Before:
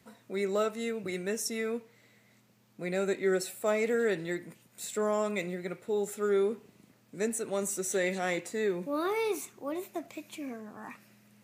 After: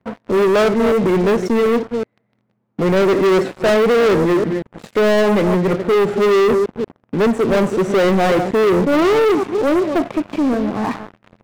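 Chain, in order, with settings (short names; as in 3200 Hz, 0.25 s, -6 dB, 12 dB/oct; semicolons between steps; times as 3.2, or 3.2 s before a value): reverse delay 0.185 s, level -12 dB; LPF 1100 Hz 12 dB/oct; sample leveller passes 5; gain +8 dB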